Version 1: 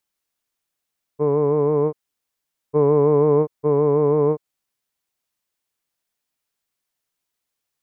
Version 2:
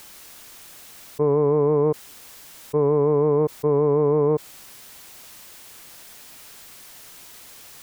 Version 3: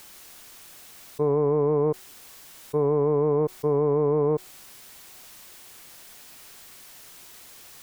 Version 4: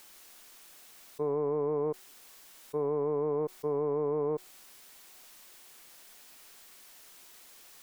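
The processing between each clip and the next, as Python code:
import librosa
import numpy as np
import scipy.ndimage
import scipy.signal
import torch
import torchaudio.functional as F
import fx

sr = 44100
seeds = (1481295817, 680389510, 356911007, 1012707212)

y1 = fx.env_flatten(x, sr, amount_pct=100)
y1 = y1 * librosa.db_to_amplitude(-3.5)
y2 = fx.comb_fb(y1, sr, f0_hz=370.0, decay_s=0.52, harmonics='all', damping=0.0, mix_pct=60)
y2 = y2 * librosa.db_to_amplitude(4.5)
y3 = fx.peak_eq(y2, sr, hz=92.0, db=-13.5, octaves=1.3)
y3 = y3 * librosa.db_to_amplitude(-7.0)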